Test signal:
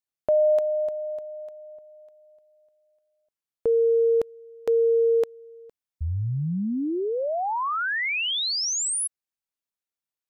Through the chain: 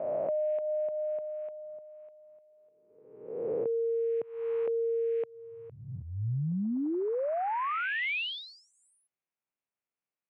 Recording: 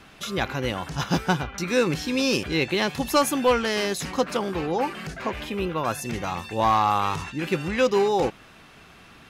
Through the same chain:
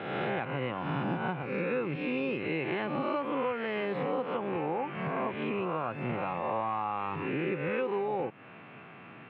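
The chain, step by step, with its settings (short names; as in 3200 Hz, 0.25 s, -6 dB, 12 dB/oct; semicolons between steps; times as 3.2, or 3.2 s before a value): spectral swells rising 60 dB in 1.13 s; elliptic band-pass 120–2500 Hz, stop band 40 dB; bell 1700 Hz -2.5 dB 0.7 oct; compressor 6:1, threshold -29 dBFS; air absorption 55 m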